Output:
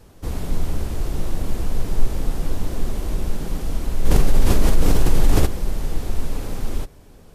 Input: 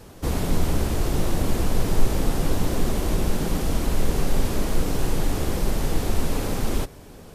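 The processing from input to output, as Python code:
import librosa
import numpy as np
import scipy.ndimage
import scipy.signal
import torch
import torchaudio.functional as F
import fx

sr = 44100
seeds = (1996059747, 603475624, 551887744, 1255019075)

y = fx.low_shelf(x, sr, hz=64.0, db=9.0)
y = fx.env_flatten(y, sr, amount_pct=70, at=(4.04, 5.45), fade=0.02)
y = y * 10.0 ** (-6.0 / 20.0)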